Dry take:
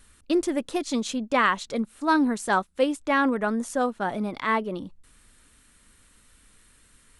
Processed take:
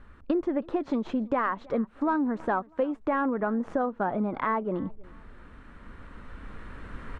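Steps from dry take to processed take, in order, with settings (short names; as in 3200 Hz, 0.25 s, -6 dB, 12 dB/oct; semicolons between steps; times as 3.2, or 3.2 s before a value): tracing distortion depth 0.04 ms; recorder AGC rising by 5.7 dB/s; Chebyshev low-pass 1200 Hz, order 2; compressor 4:1, threshold -34 dBFS, peak gain reduction 14 dB; feedback echo 0.322 s, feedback 37%, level -24 dB; gain +8 dB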